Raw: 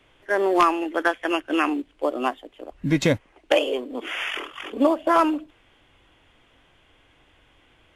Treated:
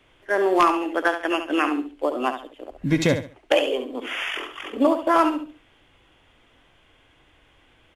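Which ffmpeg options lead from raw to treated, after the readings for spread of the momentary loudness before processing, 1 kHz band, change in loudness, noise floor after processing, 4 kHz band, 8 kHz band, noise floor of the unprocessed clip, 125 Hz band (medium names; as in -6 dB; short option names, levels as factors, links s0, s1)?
12 LU, +0.5 dB, +0.5 dB, -59 dBFS, +0.5 dB, +0.5 dB, -60 dBFS, +0.5 dB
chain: -af "aecho=1:1:69|138|207:0.355|0.0958|0.0259"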